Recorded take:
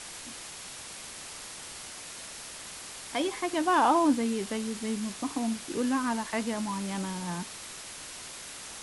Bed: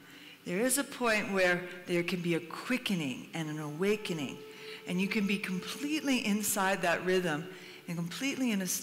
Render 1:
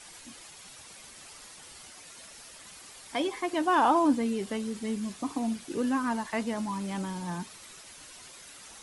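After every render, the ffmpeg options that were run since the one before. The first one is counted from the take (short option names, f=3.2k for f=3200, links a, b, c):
-af "afftdn=nr=9:nf=-43"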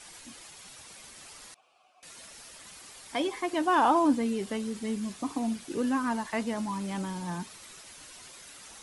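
-filter_complex "[0:a]asettb=1/sr,asplit=3[a][b][c];[a]atrim=end=1.544[d];[b]atrim=start=1.54:end=2.03,asetpts=PTS-STARTPTS,afade=t=in:d=0.004:c=qsin,afade=t=out:st=0.486:d=0.004:c=qsin,asplit=3[e][f][g];[e]bandpass=f=730:t=q:w=8,volume=0dB[h];[f]bandpass=f=1.09k:t=q:w=8,volume=-6dB[i];[g]bandpass=f=2.44k:t=q:w=8,volume=-9dB[j];[h][i][j]amix=inputs=3:normalize=0[k];[c]atrim=start=2.026[l];[d][k]acrossfade=d=0.004:c1=hsin:c2=qsin[m];[m][l]acrossfade=d=0.004:c1=qsin:c2=hsin"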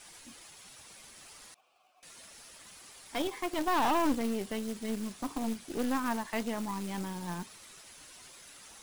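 -af "aeval=exprs='(tanh(15.8*val(0)+0.7)-tanh(0.7))/15.8':c=same,acrusher=bits=3:mode=log:mix=0:aa=0.000001"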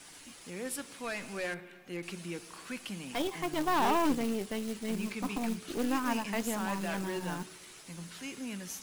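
-filter_complex "[1:a]volume=-9dB[a];[0:a][a]amix=inputs=2:normalize=0"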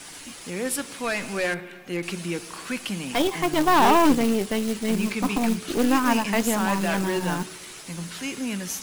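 -af "volume=10.5dB"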